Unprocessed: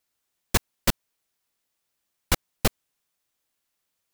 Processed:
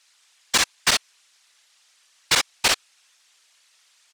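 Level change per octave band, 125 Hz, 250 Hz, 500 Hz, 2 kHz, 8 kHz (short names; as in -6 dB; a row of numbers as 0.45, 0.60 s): -11.5, -6.5, -1.0, +9.5, +8.5 dB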